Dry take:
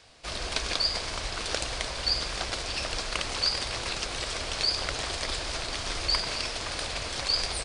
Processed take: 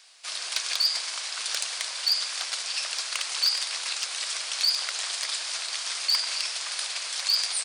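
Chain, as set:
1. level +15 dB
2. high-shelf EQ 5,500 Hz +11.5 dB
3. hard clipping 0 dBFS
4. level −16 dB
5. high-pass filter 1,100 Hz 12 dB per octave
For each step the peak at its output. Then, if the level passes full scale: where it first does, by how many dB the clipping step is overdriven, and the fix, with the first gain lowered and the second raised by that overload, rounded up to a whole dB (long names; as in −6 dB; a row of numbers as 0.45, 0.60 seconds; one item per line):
+4.5, +7.5, 0.0, −16.0, −12.0 dBFS
step 1, 7.5 dB
step 1 +7 dB, step 4 −8 dB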